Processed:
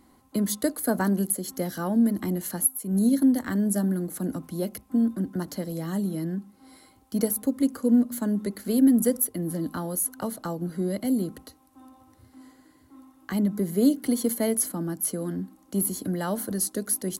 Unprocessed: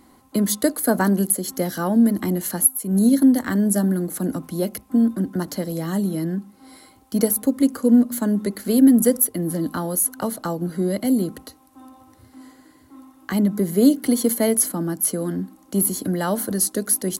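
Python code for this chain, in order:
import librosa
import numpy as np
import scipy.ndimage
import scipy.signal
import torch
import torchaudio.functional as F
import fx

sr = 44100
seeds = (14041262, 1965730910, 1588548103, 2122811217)

y = fx.low_shelf(x, sr, hz=150.0, db=4.0)
y = y * 10.0 ** (-6.5 / 20.0)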